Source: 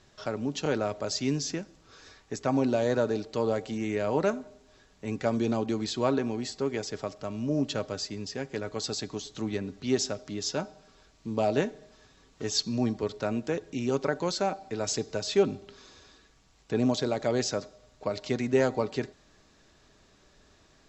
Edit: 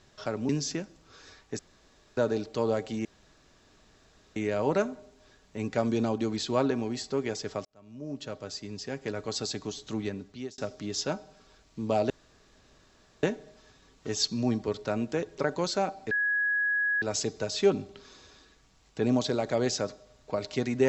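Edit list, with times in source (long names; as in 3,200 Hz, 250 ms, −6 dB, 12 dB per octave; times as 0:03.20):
0:00.49–0:01.28: remove
0:02.38–0:02.96: fill with room tone
0:03.84: splice in room tone 1.31 s
0:07.13–0:08.57: fade in
0:09.27–0:10.06: fade out equal-power
0:11.58: splice in room tone 1.13 s
0:13.73–0:14.02: remove
0:14.75: insert tone 1,670 Hz −24 dBFS 0.91 s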